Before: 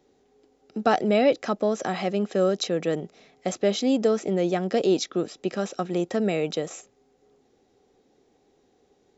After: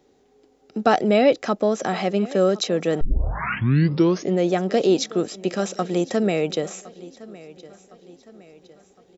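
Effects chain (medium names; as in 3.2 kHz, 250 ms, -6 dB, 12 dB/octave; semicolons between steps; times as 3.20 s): 5.05–6.23 s: treble shelf 6.7 kHz +9 dB; feedback delay 1061 ms, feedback 47%, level -20 dB; 3.01 s: tape start 1.36 s; trim +3.5 dB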